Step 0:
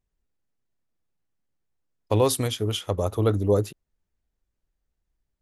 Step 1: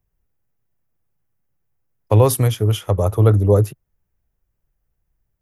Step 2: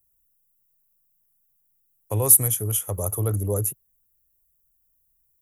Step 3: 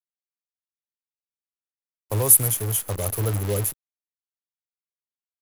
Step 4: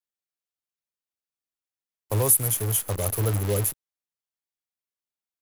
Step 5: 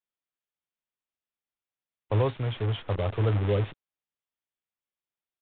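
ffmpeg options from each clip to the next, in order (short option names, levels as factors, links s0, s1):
-filter_complex "[0:a]equalizer=f=125:t=o:w=1:g=7,equalizer=f=250:t=o:w=1:g=-5,equalizer=f=4000:t=o:w=1:g=-12,equalizer=f=8000:t=o:w=1:g=-11,acrossover=split=120|3900[s0][s1][s2];[s2]acontrast=89[s3];[s0][s1][s3]amix=inputs=3:normalize=0,volume=2.11"
-filter_complex "[0:a]asplit=2[s0][s1];[s1]alimiter=limit=0.251:level=0:latency=1,volume=0.841[s2];[s0][s2]amix=inputs=2:normalize=0,aexciter=amount=9.4:drive=8:freq=6800,volume=0.188"
-af "acrusher=bits=6:dc=4:mix=0:aa=0.000001"
-af "alimiter=limit=0.422:level=0:latency=1:release=237"
-af "aresample=8000,aresample=44100"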